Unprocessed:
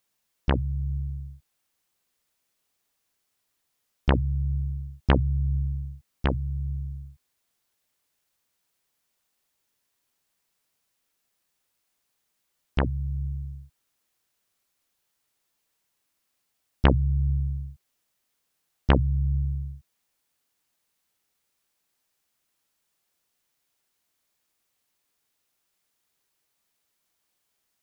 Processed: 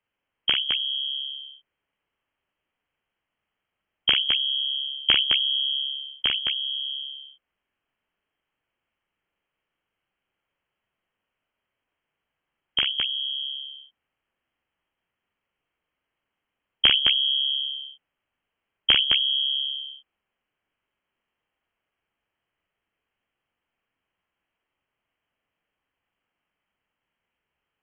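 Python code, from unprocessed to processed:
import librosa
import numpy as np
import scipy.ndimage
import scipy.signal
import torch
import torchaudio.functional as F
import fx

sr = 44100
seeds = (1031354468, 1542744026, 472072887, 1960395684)

y = fx.freq_invert(x, sr, carrier_hz=3200)
y = fx.echo_multitap(y, sr, ms=(42, 212), db=(-4.5, -4.5))
y = F.gain(torch.from_numpy(y), -1.0).numpy()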